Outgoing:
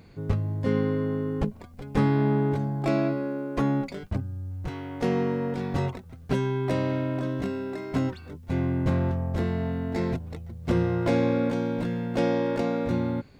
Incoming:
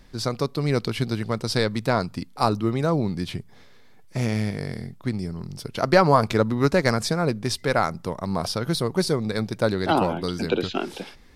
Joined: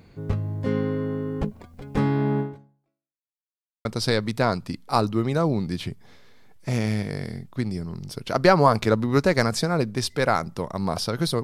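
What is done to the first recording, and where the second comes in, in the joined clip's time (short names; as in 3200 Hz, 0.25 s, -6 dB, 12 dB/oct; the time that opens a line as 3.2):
outgoing
2.4–3.31 fade out exponential
3.31–3.85 mute
3.85 switch to incoming from 1.33 s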